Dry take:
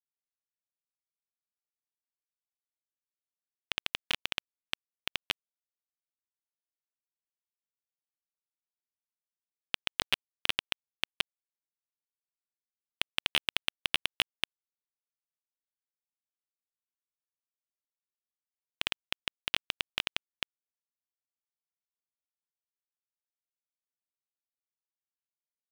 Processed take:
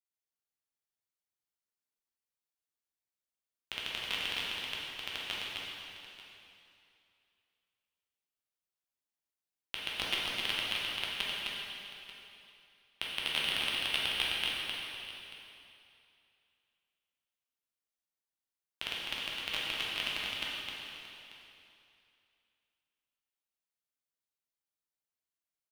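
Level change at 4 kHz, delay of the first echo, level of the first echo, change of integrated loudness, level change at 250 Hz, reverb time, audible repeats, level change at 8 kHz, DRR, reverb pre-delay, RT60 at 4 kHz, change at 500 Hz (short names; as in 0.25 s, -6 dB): +0.5 dB, 0.259 s, -4.0 dB, -0.5 dB, +1.0 dB, 2.9 s, 2, +0.5 dB, -7.0 dB, 5 ms, 2.7 s, +1.0 dB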